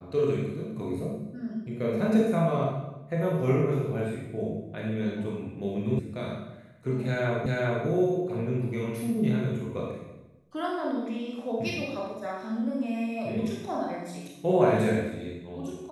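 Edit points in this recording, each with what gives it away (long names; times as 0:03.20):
0:05.99: cut off before it has died away
0:07.46: the same again, the last 0.4 s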